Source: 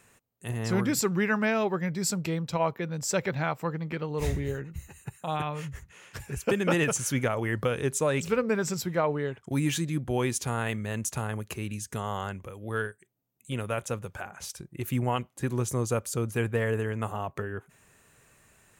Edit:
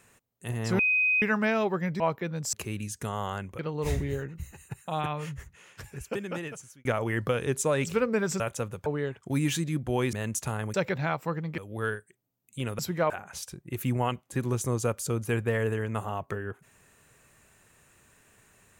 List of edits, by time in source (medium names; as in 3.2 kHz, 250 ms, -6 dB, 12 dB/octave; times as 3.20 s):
0.79–1.22 s: bleep 2.51 kHz -21 dBFS
2.00–2.58 s: delete
3.11–3.95 s: swap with 11.44–12.50 s
5.62–7.21 s: fade out
8.76–9.07 s: swap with 13.71–14.17 s
10.34–10.83 s: delete